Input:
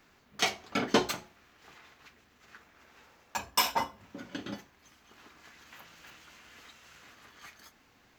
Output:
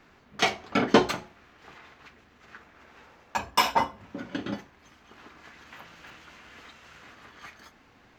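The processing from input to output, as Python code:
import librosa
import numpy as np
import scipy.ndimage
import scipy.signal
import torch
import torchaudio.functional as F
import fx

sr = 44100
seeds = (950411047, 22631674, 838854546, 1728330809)

y = fx.lowpass(x, sr, hz=2500.0, slope=6)
y = F.gain(torch.from_numpy(y), 7.0).numpy()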